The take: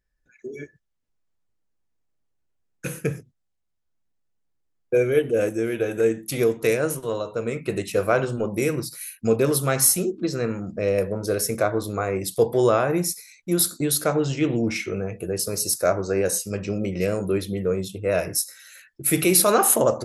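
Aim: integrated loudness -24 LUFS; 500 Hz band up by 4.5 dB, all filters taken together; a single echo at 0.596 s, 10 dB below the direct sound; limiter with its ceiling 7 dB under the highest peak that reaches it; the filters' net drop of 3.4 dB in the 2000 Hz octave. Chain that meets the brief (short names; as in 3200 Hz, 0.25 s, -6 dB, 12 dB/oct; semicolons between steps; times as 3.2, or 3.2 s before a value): bell 500 Hz +5.5 dB; bell 2000 Hz -5 dB; limiter -10.5 dBFS; echo 0.596 s -10 dB; gain -2.5 dB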